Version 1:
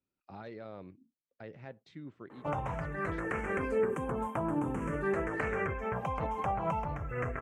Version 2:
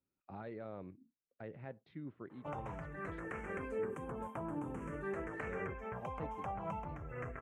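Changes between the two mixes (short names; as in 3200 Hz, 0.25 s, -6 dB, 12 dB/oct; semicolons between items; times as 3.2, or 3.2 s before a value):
speech: add air absorption 360 m; background -9.0 dB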